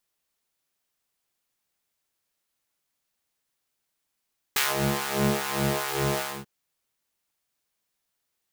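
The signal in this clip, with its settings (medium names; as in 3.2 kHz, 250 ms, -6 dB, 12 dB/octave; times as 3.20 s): synth patch with filter wobble C#3, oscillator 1 triangle, interval +7 st, oscillator 2 level -6 dB, sub -3 dB, noise -14.5 dB, filter highpass, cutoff 350 Hz, Q 0.89, filter envelope 2 oct, filter decay 0.15 s, filter sustain 15%, attack 2.6 ms, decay 0.18 s, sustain -10.5 dB, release 0.24 s, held 1.65 s, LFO 2.5 Hz, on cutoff 1.1 oct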